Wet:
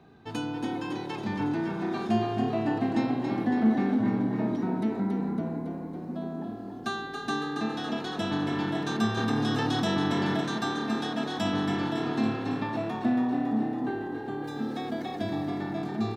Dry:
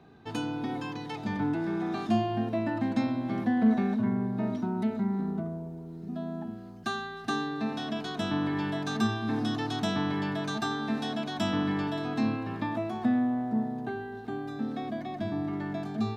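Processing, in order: 14.44–15.48 high shelf 3300 Hz +10 dB; frequency-shifting echo 0.278 s, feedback 61%, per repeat +36 Hz, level -6.5 dB; 9.17–10.41 fast leveller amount 70%

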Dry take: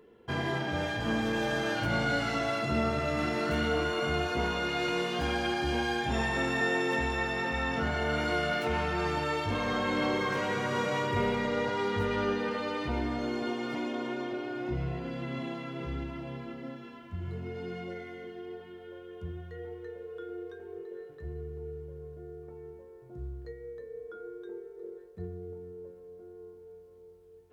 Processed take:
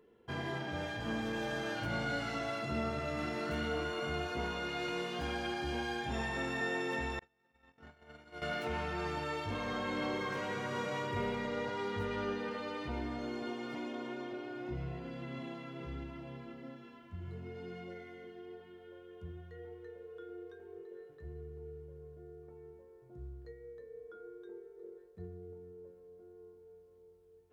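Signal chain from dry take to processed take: 7.19–8.42 gate -26 dBFS, range -39 dB; gain -7 dB

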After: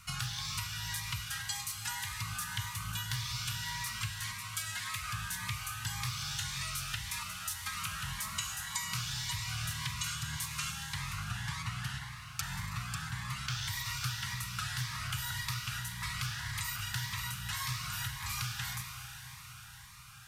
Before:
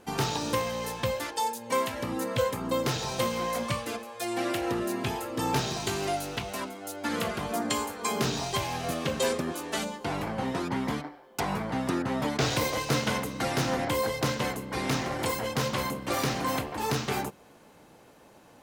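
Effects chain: elliptic band-stop 140–1300 Hz, stop band 80 dB; compressor 6:1, threshold -42 dBFS, peak gain reduction 15.5 dB; reverb RT60 4.8 s, pre-delay 29 ms, DRR 4 dB; speed mistake 48 kHz file played as 44.1 kHz; cascading phaser rising 1.8 Hz; gain +7.5 dB

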